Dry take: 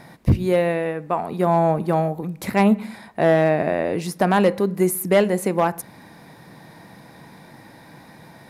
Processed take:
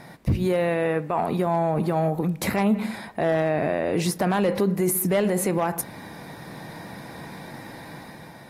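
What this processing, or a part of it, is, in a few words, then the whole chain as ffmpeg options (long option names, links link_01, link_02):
low-bitrate web radio: -af "dynaudnorm=framelen=130:gausssize=9:maxgain=5dB,alimiter=limit=-14.5dB:level=0:latency=1:release=29" -ar 44100 -c:a aac -b:a 48k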